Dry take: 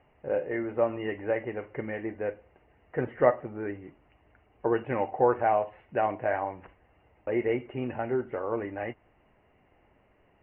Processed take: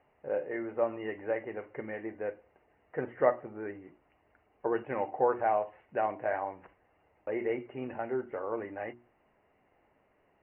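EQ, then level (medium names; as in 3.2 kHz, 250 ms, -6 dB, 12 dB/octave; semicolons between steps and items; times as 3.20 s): low-pass 2.6 kHz 12 dB/octave; bass shelf 140 Hz -10.5 dB; hum notches 60/120/180/240/300/360 Hz; -3.0 dB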